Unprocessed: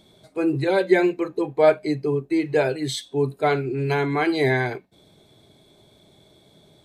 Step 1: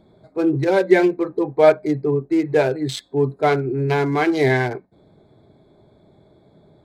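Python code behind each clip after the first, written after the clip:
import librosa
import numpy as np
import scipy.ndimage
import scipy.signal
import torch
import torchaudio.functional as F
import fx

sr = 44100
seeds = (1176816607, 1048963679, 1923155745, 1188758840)

y = fx.wiener(x, sr, points=15)
y = y * 10.0 ** (3.5 / 20.0)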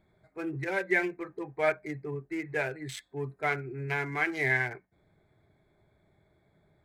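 y = fx.graphic_eq_10(x, sr, hz=(125, 250, 500, 1000, 2000, 4000), db=(-4, -10, -8, -5, 9, -10))
y = y * 10.0 ** (-7.0 / 20.0)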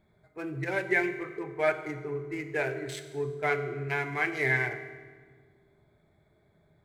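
y = fx.rev_fdn(x, sr, rt60_s=1.5, lf_ratio=1.6, hf_ratio=0.8, size_ms=14.0, drr_db=7.0)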